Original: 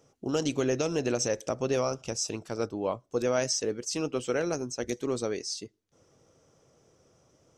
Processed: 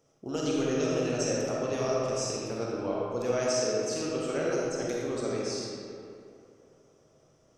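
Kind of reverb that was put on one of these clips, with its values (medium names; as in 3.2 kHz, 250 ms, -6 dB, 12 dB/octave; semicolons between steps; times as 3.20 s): algorithmic reverb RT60 2.6 s, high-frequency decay 0.6×, pre-delay 5 ms, DRR -5 dB; trim -6 dB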